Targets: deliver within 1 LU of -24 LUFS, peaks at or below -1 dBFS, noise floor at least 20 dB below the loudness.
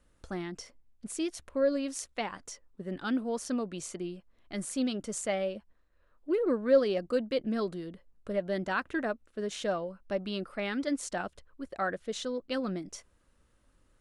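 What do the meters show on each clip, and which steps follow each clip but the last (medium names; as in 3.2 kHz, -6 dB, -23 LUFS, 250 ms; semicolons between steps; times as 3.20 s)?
loudness -33.0 LUFS; peak level -13.0 dBFS; loudness target -24.0 LUFS
-> trim +9 dB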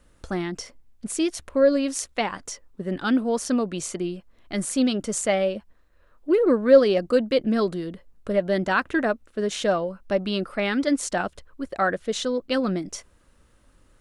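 loudness -24.0 LUFS; peak level -3.5 dBFS; noise floor -59 dBFS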